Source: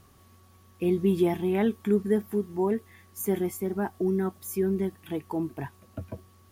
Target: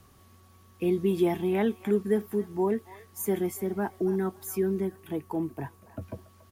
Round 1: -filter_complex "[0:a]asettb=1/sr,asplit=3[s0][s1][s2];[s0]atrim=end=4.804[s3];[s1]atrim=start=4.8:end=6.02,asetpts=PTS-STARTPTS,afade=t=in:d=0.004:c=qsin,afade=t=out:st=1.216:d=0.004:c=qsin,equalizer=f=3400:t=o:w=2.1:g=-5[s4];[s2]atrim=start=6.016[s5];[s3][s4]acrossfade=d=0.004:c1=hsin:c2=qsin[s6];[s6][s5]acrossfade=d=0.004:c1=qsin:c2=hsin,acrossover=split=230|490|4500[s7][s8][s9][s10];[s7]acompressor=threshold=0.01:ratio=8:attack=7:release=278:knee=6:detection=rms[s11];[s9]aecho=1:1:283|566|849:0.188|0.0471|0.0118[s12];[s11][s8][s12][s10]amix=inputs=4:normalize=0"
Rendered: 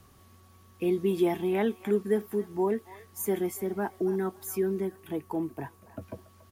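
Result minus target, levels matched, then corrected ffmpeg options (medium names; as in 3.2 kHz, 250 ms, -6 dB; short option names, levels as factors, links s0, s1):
compression: peak gain reduction +7.5 dB
-filter_complex "[0:a]asettb=1/sr,asplit=3[s0][s1][s2];[s0]atrim=end=4.804[s3];[s1]atrim=start=4.8:end=6.02,asetpts=PTS-STARTPTS,afade=t=in:d=0.004:c=qsin,afade=t=out:st=1.216:d=0.004:c=qsin,equalizer=f=3400:t=o:w=2.1:g=-5[s4];[s2]atrim=start=6.016[s5];[s3][s4]acrossfade=d=0.004:c1=hsin:c2=qsin[s6];[s6][s5]acrossfade=d=0.004:c1=qsin:c2=hsin,acrossover=split=230|490|4500[s7][s8][s9][s10];[s7]acompressor=threshold=0.0266:ratio=8:attack=7:release=278:knee=6:detection=rms[s11];[s9]aecho=1:1:283|566|849:0.188|0.0471|0.0118[s12];[s11][s8][s12][s10]amix=inputs=4:normalize=0"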